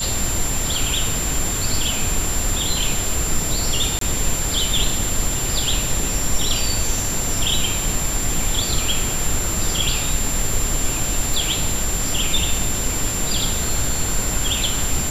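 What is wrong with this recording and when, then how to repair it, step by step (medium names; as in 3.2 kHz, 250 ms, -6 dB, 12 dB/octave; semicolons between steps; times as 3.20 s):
whine 7.3 kHz -24 dBFS
3.99–4.01 s: dropout 23 ms
11.34 s: pop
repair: de-click; band-stop 7.3 kHz, Q 30; interpolate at 3.99 s, 23 ms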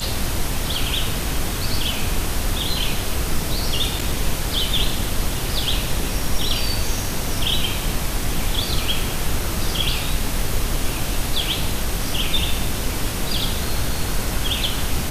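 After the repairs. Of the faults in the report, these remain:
nothing left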